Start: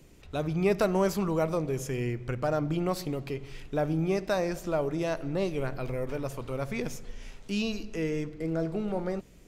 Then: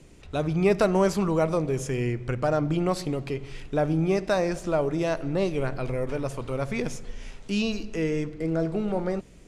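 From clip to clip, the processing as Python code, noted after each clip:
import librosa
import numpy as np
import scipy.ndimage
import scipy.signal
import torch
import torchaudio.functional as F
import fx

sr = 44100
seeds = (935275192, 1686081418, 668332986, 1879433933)

y = scipy.signal.sosfilt(scipy.signal.cheby1(3, 1.0, 10000.0, 'lowpass', fs=sr, output='sos'), x)
y = y * librosa.db_to_amplitude(4.0)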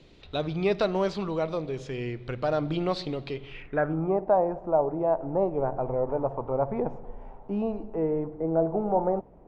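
y = fx.peak_eq(x, sr, hz=590.0, db=4.5, octaves=2.2)
y = fx.rider(y, sr, range_db=10, speed_s=2.0)
y = fx.filter_sweep_lowpass(y, sr, from_hz=3900.0, to_hz=850.0, start_s=3.35, end_s=4.18, q=4.0)
y = y * librosa.db_to_amplitude(-7.5)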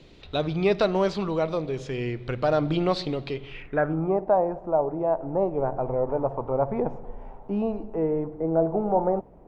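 y = fx.rider(x, sr, range_db=3, speed_s=2.0)
y = y * librosa.db_to_amplitude(2.0)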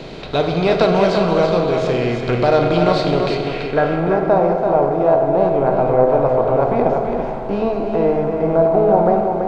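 y = fx.bin_compress(x, sr, power=0.6)
y = y + 10.0 ** (-5.5 / 20.0) * np.pad(y, (int(335 * sr / 1000.0), 0))[:len(y)]
y = fx.rev_fdn(y, sr, rt60_s=2.1, lf_ratio=1.0, hf_ratio=0.6, size_ms=13.0, drr_db=4.0)
y = y * librosa.db_to_amplitude(3.5)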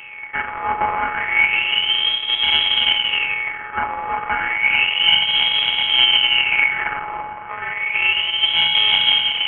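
y = np.r_[np.sort(x[:len(x) // 32 * 32].reshape(-1, 32), axis=1).ravel(), x[len(x) // 32 * 32:]]
y = fx.filter_lfo_highpass(y, sr, shape='sine', hz=0.31, low_hz=310.0, high_hz=2600.0, q=4.3)
y = fx.freq_invert(y, sr, carrier_hz=3600)
y = y * librosa.db_to_amplitude(-6.0)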